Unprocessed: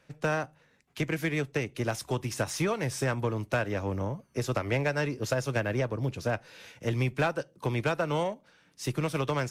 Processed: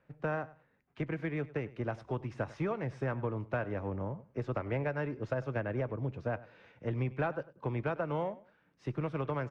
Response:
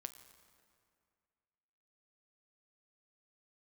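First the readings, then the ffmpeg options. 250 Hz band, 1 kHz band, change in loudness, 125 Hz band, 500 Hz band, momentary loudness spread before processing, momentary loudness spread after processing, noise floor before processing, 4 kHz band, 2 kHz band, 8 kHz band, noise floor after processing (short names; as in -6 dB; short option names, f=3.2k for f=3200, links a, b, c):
-5.0 dB, -5.5 dB, -5.5 dB, -5.0 dB, -5.0 dB, 6 LU, 5 LU, -65 dBFS, under -15 dB, -8.5 dB, under -25 dB, -72 dBFS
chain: -filter_complex "[0:a]lowpass=1.7k,asplit=2[a][b];[b]aecho=0:1:99|198:0.112|0.0236[c];[a][c]amix=inputs=2:normalize=0,volume=-5dB"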